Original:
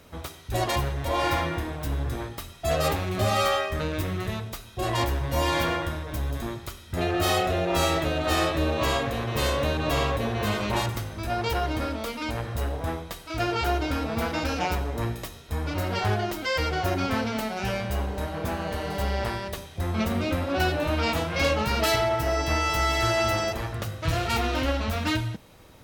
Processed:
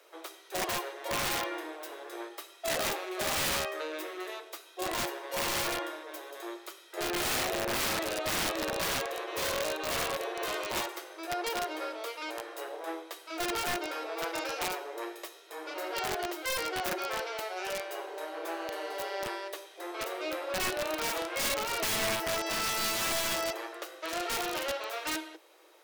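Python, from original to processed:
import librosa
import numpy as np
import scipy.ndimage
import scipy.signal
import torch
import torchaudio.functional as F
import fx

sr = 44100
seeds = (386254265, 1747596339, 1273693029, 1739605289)

y = scipy.signal.sosfilt(scipy.signal.cheby1(8, 1.0, 320.0, 'highpass', fs=sr, output='sos'), x)
y = (np.mod(10.0 ** (20.5 / 20.0) * y + 1.0, 2.0) - 1.0) / 10.0 ** (20.5 / 20.0)
y = y * 10.0 ** (-4.5 / 20.0)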